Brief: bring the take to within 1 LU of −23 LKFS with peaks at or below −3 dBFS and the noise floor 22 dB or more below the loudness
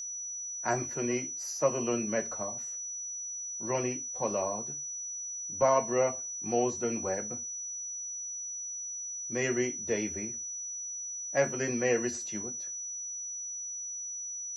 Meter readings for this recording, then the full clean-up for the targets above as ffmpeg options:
interfering tone 5,900 Hz; level of the tone −36 dBFS; integrated loudness −32.5 LKFS; sample peak −13.5 dBFS; target loudness −23.0 LKFS
→ -af "bandreject=frequency=5900:width=30"
-af "volume=9.5dB"

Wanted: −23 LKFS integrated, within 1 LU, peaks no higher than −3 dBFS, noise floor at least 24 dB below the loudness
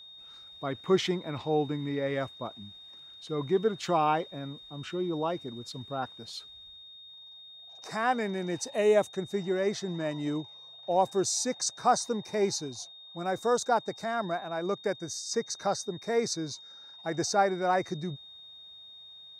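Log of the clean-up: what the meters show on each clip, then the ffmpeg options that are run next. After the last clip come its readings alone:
interfering tone 3,700 Hz; level of the tone −47 dBFS; integrated loudness −30.5 LKFS; sample peak −12.0 dBFS; target loudness −23.0 LKFS
→ -af "bandreject=frequency=3700:width=30"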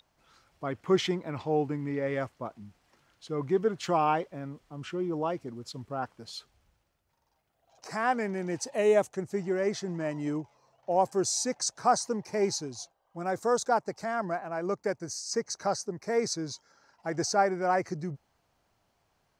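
interfering tone none found; integrated loudness −30.5 LKFS; sample peak −12.0 dBFS; target loudness −23.0 LKFS
→ -af "volume=7.5dB"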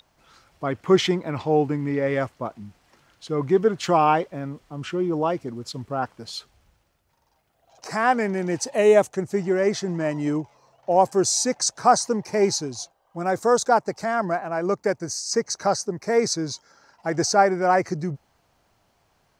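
integrated loudness −23.0 LKFS; sample peak −4.5 dBFS; background noise floor −67 dBFS

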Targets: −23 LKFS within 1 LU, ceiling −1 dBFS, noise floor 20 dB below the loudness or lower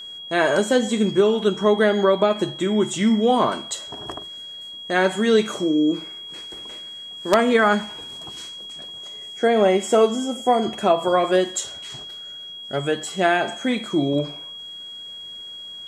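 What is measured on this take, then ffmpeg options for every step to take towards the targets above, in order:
interfering tone 3,300 Hz; level of the tone −34 dBFS; integrated loudness −20.5 LKFS; sample peak −3.5 dBFS; target loudness −23.0 LKFS
→ -af "bandreject=frequency=3300:width=30"
-af "volume=-2.5dB"

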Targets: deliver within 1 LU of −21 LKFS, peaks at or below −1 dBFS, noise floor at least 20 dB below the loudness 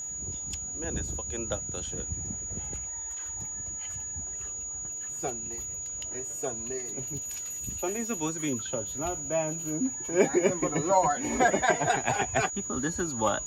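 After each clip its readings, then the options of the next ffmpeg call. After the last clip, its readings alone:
interfering tone 6,800 Hz; level of the tone −34 dBFS; integrated loudness −30.0 LKFS; sample peak −8.5 dBFS; target loudness −21.0 LKFS
→ -af "bandreject=frequency=6800:width=30"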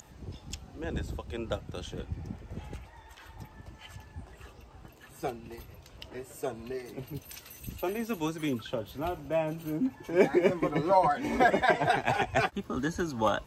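interfering tone none found; integrated loudness −30.5 LKFS; sample peak −8.5 dBFS; target loudness −21.0 LKFS
→ -af "volume=9.5dB,alimiter=limit=-1dB:level=0:latency=1"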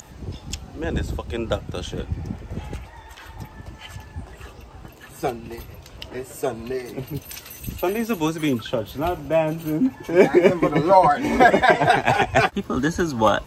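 integrated loudness −21.0 LKFS; sample peak −1.0 dBFS; background noise floor −44 dBFS

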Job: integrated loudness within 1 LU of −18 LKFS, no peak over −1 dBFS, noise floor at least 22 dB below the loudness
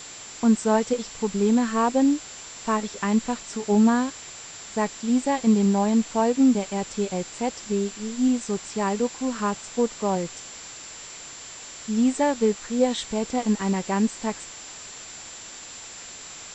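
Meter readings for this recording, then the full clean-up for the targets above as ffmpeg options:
interfering tone 7,300 Hz; level of the tone −41 dBFS; background noise floor −41 dBFS; target noise floor −46 dBFS; integrated loudness −24.0 LKFS; sample peak −9.0 dBFS; target loudness −18.0 LKFS
→ -af "bandreject=frequency=7300:width=30"
-af "afftdn=noise_reduction=6:noise_floor=-41"
-af "volume=6dB"

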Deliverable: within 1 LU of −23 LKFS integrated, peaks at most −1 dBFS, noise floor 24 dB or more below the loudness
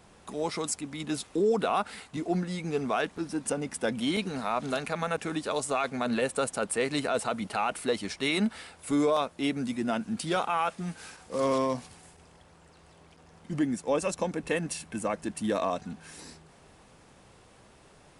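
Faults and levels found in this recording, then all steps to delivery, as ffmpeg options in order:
integrated loudness −30.5 LKFS; sample peak −15.0 dBFS; target loudness −23.0 LKFS
→ -af "volume=7.5dB"

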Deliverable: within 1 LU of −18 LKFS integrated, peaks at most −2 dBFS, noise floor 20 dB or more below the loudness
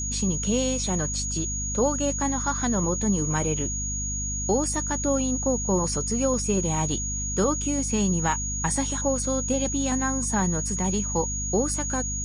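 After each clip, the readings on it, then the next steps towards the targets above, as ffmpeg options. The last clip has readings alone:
mains hum 50 Hz; hum harmonics up to 250 Hz; level of the hum −30 dBFS; interfering tone 6,700 Hz; level of the tone −29 dBFS; integrated loudness −25.0 LKFS; sample peak −10.5 dBFS; target loudness −18.0 LKFS
→ -af "bandreject=frequency=50:width_type=h:width=6,bandreject=frequency=100:width_type=h:width=6,bandreject=frequency=150:width_type=h:width=6,bandreject=frequency=200:width_type=h:width=6,bandreject=frequency=250:width_type=h:width=6"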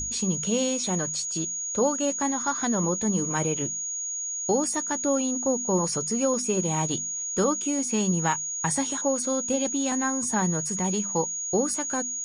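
mains hum none found; interfering tone 6,700 Hz; level of the tone −29 dBFS
→ -af "bandreject=frequency=6700:width=30"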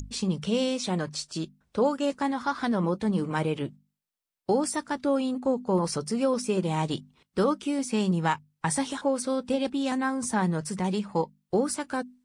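interfering tone none found; integrated loudness −28.0 LKFS; sample peak −11.0 dBFS; target loudness −18.0 LKFS
→ -af "volume=10dB,alimiter=limit=-2dB:level=0:latency=1"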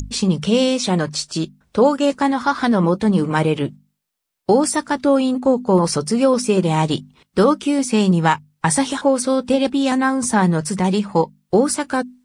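integrated loudness −18.0 LKFS; sample peak −2.0 dBFS; background noise floor −72 dBFS

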